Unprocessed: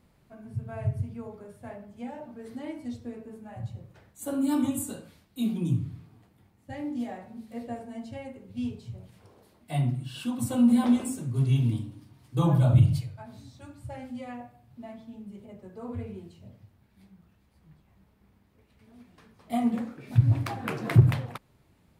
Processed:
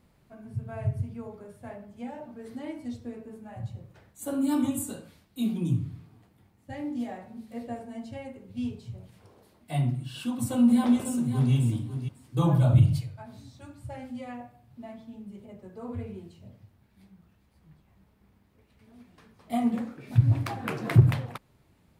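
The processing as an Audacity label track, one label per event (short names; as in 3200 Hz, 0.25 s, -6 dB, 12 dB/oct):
10.440000	11.530000	echo throw 0.55 s, feedback 15%, level -9 dB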